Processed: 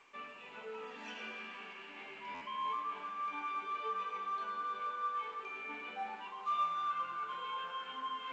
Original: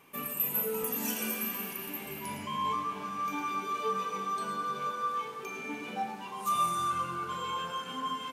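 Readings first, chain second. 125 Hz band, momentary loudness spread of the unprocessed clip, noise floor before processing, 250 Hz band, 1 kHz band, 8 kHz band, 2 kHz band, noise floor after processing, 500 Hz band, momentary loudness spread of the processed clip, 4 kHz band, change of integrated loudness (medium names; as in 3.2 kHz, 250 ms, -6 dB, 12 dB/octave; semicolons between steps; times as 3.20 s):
under -20 dB, 9 LU, -42 dBFS, -16.5 dB, -5.0 dB, under -25 dB, -4.0 dB, -51 dBFS, -10.5 dB, 11 LU, -7.0 dB, -7.0 dB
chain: high-pass 260 Hz 12 dB/octave; tilt shelf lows -8 dB, about 810 Hz; hum notches 50/100/150/200/250/300/350 Hz; reverse; upward compressor, threshold -30 dBFS; reverse; distance through air 420 m; on a send: thinning echo 339 ms, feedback 76%, high-pass 470 Hz, level -22 dB; on the sum: buffer glitch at 2.34 s, samples 512, times 5; trim -5.5 dB; A-law 128 kbps 16 kHz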